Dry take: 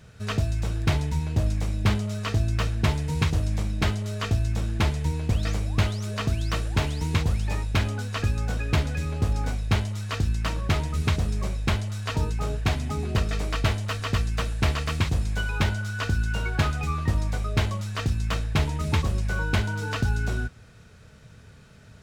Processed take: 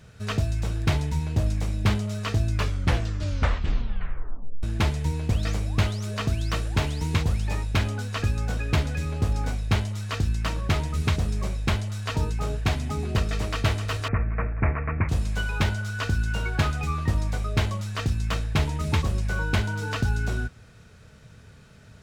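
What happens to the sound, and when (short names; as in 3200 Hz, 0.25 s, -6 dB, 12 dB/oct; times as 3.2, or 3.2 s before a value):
2.48 tape stop 2.15 s
13.14–13.58 echo throw 0.26 s, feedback 80%, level -10.5 dB
14.08–15.09 steep low-pass 2400 Hz 96 dB/oct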